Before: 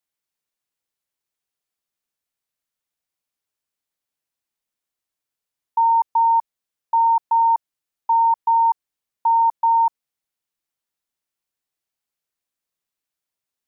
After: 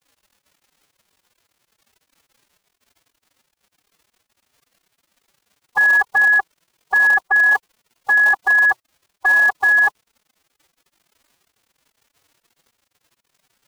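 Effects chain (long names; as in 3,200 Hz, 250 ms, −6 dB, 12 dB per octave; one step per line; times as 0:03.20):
surface crackle 120 per second −44 dBFS
phase-vocoder pitch shift with formants kept +10.5 semitones
level +2.5 dB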